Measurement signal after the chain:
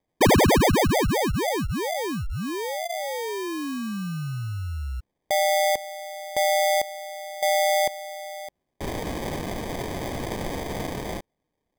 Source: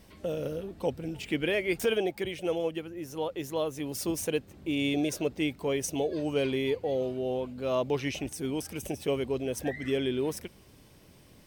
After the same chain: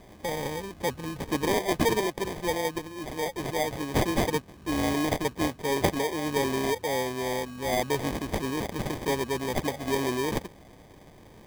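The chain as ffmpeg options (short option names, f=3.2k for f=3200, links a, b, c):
-af "crystalizer=i=2.5:c=0,acrusher=samples=32:mix=1:aa=0.000001,volume=1dB"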